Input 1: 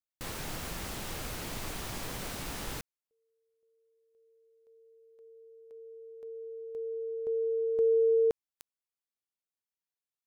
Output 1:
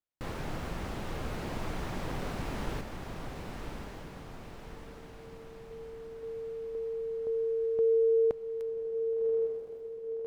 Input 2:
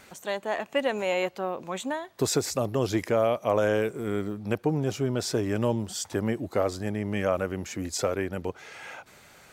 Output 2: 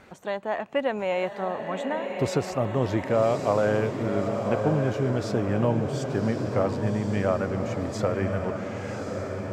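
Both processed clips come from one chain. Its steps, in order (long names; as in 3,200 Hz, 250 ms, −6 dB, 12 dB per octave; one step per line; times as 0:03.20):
low-pass filter 1,200 Hz 6 dB per octave
on a send: feedback delay with all-pass diffusion 1,115 ms, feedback 54%, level −5 dB
on the sum: dynamic equaliser 360 Hz, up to −5 dB, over −40 dBFS, Q 1.2
level +4 dB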